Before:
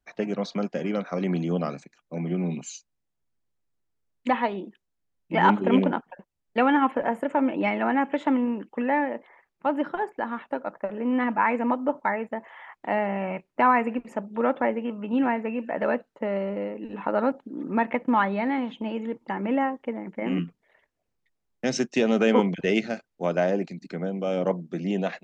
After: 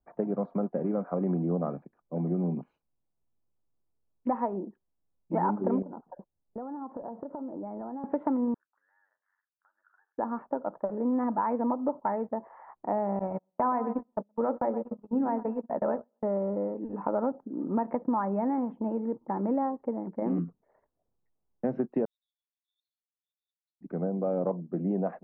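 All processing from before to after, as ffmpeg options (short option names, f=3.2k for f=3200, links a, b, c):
-filter_complex "[0:a]asettb=1/sr,asplit=3[a][b][c];[a]atrim=end=5.824[d];[b]atrim=start=5.82:end=8.04,asetpts=PTS-STARTPTS,afade=t=in:d=0.004:c=qsin,afade=t=out:st=2.216:d=0.004:c=qsin,lowpass=1.1k,acompressor=threshold=-34dB:ratio=10:attack=3.2:release=140:knee=1:detection=peak[e];[c]atrim=start=8.036[f];[d][e]acrossfade=d=0.004:c1=hsin:c2=qsin[g];[g][f]acrossfade=d=0.004:c1=qsin:c2=hsin,asettb=1/sr,asplit=3[h][i][j];[h]atrim=end=8.544[k];[i]atrim=start=8.54:end=10.18,asetpts=PTS-STARTPTS,afade=t=in:d=0.004:c=qsin,afade=t=out:st=1.636:d=0.004:c=qsin,acompressor=threshold=-36dB:ratio=20:attack=3.2:release=140:knee=1:detection=peak,aeval=exprs='val(0)*sin(2*PI*48*n/s)':c=same,asuperpass=centerf=1600:order=4:qfactor=4[l];[j]atrim=start=10.176[m];[k][l]acrossfade=d=0.004:c1=hsin:c2=qsin[n];[n][m]acrossfade=d=0.004:c1=qsin:c2=hsin,asettb=1/sr,asplit=3[o][p][q];[o]atrim=end=13.194[r];[p]atrim=start=13.19:end=16.24,asetpts=PTS-STARTPTS,afade=t=in:d=0.004:c=qsin,afade=t=out:st=3.046:d=0.004:c=qsin,bandreject=f=60:t=h:w=6,bandreject=f=120:t=h:w=6,bandreject=f=180:t=h:w=6,bandreject=f=240:t=h:w=6,bandreject=f=300:t=h:w=6,bandreject=f=360:t=h:w=6,bandreject=f=420:t=h:w=6,bandreject=f=480:t=h:w=6,bandreject=f=540:t=h:w=6,bandreject=f=600:t=h:w=6,asplit=2[s][t];[t]adelay=123,lowpass=f=3.3k:p=1,volume=-13dB,asplit=2[u][v];[v]adelay=123,lowpass=f=3.3k:p=1,volume=0.35,asplit=2[w][x];[x]adelay=123,lowpass=f=3.3k:p=1,volume=0.35[y];[s][u][w][y]amix=inputs=4:normalize=0,atrim=end_sample=134505,agate=range=-33dB:threshold=-31dB:ratio=16:release=100:detection=peak[z];[q]atrim=start=16.236[aa];[r][z]acrossfade=d=0.004:c1=hsin:c2=qsin[ab];[ab][aa]acrossfade=d=0.004:c1=qsin:c2=hsin,asettb=1/sr,asplit=3[ac][ad][ae];[ac]atrim=end=22.054[af];[ad]atrim=start=22.05:end=23.81,asetpts=PTS-STARTPTS,afade=t=in:d=0.004:c=qsin,afade=t=out:st=1.756:d=0.004:c=qsin,asuperpass=centerf=4000:order=20:qfactor=3.4,aecho=1:1:7.4:0.89,atrim=end_sample=77616[ag];[ae]atrim=start=23.806[ah];[af][ag]acrossfade=d=0.004:c1=hsin:c2=qsin[ai];[ai][ah]acrossfade=d=0.004:c1=qsin:c2=hsin,lowpass=f=1.1k:w=0.5412,lowpass=f=1.1k:w=1.3066,acompressor=threshold=-24dB:ratio=6"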